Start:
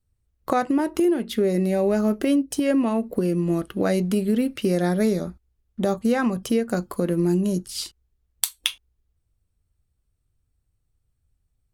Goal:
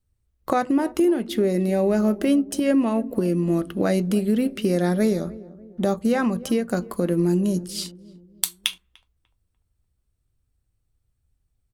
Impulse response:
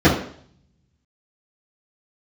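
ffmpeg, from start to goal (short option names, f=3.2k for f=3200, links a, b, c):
-filter_complex "[0:a]asplit=2[a][b];[b]adelay=296,lowpass=f=820:p=1,volume=-18dB,asplit=2[c][d];[d]adelay=296,lowpass=f=820:p=1,volume=0.5,asplit=2[e][f];[f]adelay=296,lowpass=f=820:p=1,volume=0.5,asplit=2[g][h];[h]adelay=296,lowpass=f=820:p=1,volume=0.5[i];[a][c][e][g][i]amix=inputs=5:normalize=0,asplit=2[j][k];[1:a]atrim=start_sample=2205,lowpass=2.3k[l];[k][l]afir=irnorm=-1:irlink=0,volume=-47dB[m];[j][m]amix=inputs=2:normalize=0"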